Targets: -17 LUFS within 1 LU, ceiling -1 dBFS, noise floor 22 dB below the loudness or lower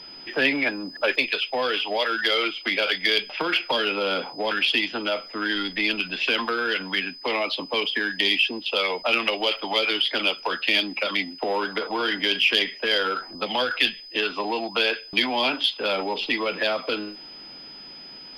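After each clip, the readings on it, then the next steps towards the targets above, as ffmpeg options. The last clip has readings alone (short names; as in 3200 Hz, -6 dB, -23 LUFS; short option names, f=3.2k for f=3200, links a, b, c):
steady tone 5000 Hz; tone level -40 dBFS; loudness -23.5 LUFS; peak -3.5 dBFS; loudness target -17.0 LUFS
-> -af "bandreject=f=5k:w=30"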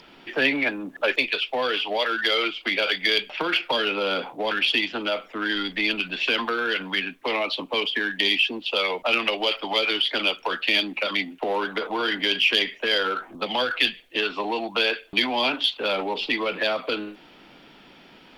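steady tone none; loudness -23.5 LUFS; peak -3.5 dBFS; loudness target -17.0 LUFS
-> -af "volume=6.5dB,alimiter=limit=-1dB:level=0:latency=1"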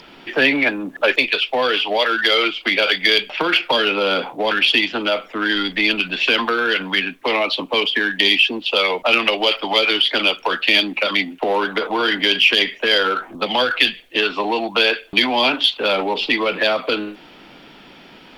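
loudness -17.0 LUFS; peak -1.0 dBFS; noise floor -44 dBFS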